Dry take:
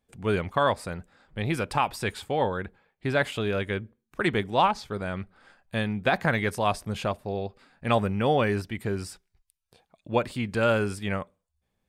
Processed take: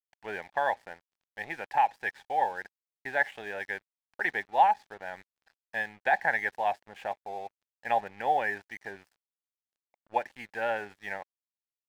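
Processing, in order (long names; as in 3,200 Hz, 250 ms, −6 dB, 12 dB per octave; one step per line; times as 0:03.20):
pair of resonant band-passes 1,200 Hz, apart 1.1 octaves
dead-zone distortion −58.5 dBFS
level +6 dB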